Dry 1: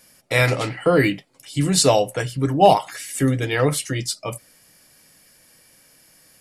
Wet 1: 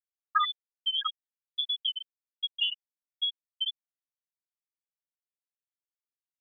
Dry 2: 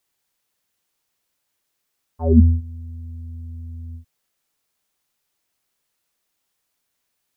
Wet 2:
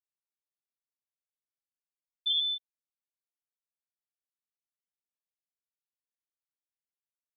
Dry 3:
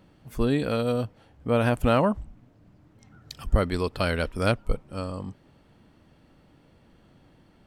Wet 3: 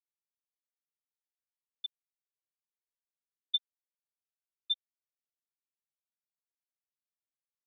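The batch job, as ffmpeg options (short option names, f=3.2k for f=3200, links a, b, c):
-filter_complex "[0:a]acrossover=split=510|1300[a][b][c];[b]aeval=exprs='max(val(0),0)':c=same[d];[a][d][c]amix=inputs=3:normalize=0,adynamicsmooth=sensitivity=7:basefreq=530,highshelf=f=2k:g=9,lowpass=f=3.1k:t=q:w=0.5098,lowpass=f=3.1k:t=q:w=0.6013,lowpass=f=3.1k:t=q:w=0.9,lowpass=f=3.1k:t=q:w=2.563,afreqshift=-3600,asplit=2[e][f];[f]adelay=157.4,volume=-27dB,highshelf=f=4k:g=-3.54[g];[e][g]amix=inputs=2:normalize=0,afftfilt=real='re*gte(hypot(re,im),1.12)':imag='im*gte(hypot(re,im),1.12)':win_size=1024:overlap=0.75,acompressor=threshold=-28dB:ratio=6,equalizer=f=770:w=0.63:g=12,volume=-2dB"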